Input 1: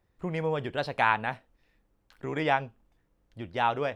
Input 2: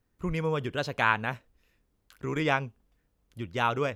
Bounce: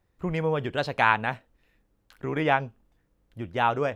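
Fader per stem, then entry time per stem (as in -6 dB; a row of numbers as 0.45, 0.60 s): 0.0, -6.5 dB; 0.00, 0.00 s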